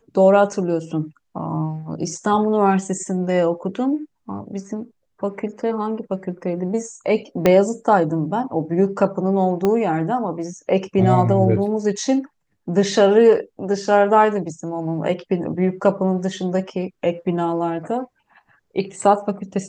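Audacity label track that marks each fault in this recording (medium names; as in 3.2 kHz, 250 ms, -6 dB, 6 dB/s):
7.460000	7.460000	pop -3 dBFS
9.650000	9.650000	pop -8 dBFS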